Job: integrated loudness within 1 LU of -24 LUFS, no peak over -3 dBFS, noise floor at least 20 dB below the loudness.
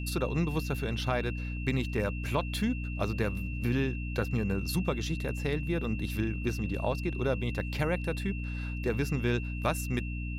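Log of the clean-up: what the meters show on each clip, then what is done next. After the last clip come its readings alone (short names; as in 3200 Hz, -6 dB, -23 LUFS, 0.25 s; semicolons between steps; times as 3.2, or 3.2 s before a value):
hum 60 Hz; harmonics up to 300 Hz; hum level -33 dBFS; steady tone 2700 Hz; tone level -43 dBFS; loudness -32.0 LUFS; peak -14.5 dBFS; loudness target -24.0 LUFS
-> notches 60/120/180/240/300 Hz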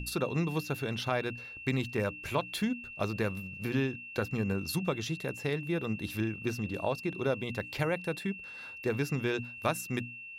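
hum none; steady tone 2700 Hz; tone level -43 dBFS
-> notch 2700 Hz, Q 30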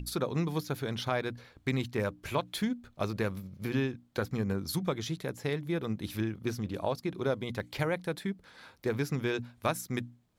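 steady tone none; loudness -34.0 LUFS; peak -16.0 dBFS; loudness target -24.0 LUFS
-> gain +10 dB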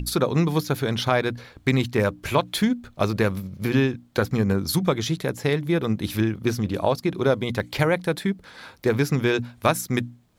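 loudness -24.0 LUFS; peak -6.0 dBFS; noise floor -54 dBFS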